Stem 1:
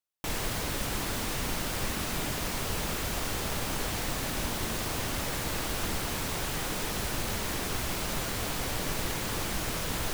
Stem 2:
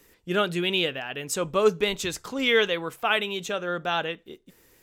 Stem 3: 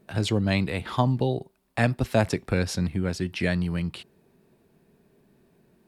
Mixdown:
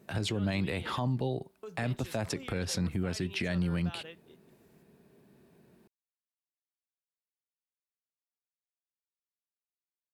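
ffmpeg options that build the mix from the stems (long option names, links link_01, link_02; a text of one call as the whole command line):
ffmpeg -i stem1.wav -i stem2.wav -i stem3.wav -filter_complex "[1:a]alimiter=limit=-20dB:level=0:latency=1:release=59,volume=-16dB,asplit=3[link_01][link_02][link_03];[link_01]atrim=end=0.99,asetpts=PTS-STARTPTS,afade=type=out:start_time=0.986:duration=0.004:curve=hsin[link_04];[link_02]atrim=start=0.99:end=1.63,asetpts=PTS-STARTPTS,volume=0[link_05];[link_03]atrim=start=1.63,asetpts=PTS-STARTPTS,afade=type=in:duration=0.004:curve=hsin[link_06];[link_04][link_05][link_06]concat=n=3:v=0:a=1[link_07];[2:a]highpass=64,alimiter=limit=-17dB:level=0:latency=1:release=106,volume=0dB[link_08];[link_07][link_08]amix=inputs=2:normalize=0,alimiter=limit=-22.5dB:level=0:latency=1:release=128" out.wav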